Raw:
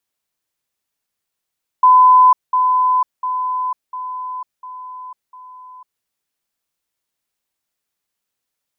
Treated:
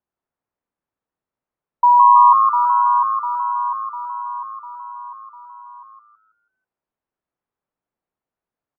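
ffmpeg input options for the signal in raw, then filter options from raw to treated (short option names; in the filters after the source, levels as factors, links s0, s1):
-f lavfi -i "aevalsrc='pow(10,(-5.5-6*floor(t/0.7))/20)*sin(2*PI*1010*t)*clip(min(mod(t,0.7),0.5-mod(t,0.7))/0.005,0,1)':d=4.2:s=44100"
-filter_complex "[0:a]afftfilt=real='real(if(between(b,1,1012),(2*floor((b-1)/92)+1)*92-b,b),0)':imag='imag(if(between(b,1,1012),(2*floor((b-1)/92)+1)*92-b,b),0)*if(between(b,1,1012),-1,1)':win_size=2048:overlap=0.75,lowpass=1100,asplit=2[s0][s1];[s1]asplit=5[s2][s3][s4][s5][s6];[s2]adelay=163,afreqshift=110,volume=0.668[s7];[s3]adelay=326,afreqshift=220,volume=0.24[s8];[s4]adelay=489,afreqshift=330,volume=0.0871[s9];[s5]adelay=652,afreqshift=440,volume=0.0313[s10];[s6]adelay=815,afreqshift=550,volume=0.0112[s11];[s7][s8][s9][s10][s11]amix=inputs=5:normalize=0[s12];[s0][s12]amix=inputs=2:normalize=0"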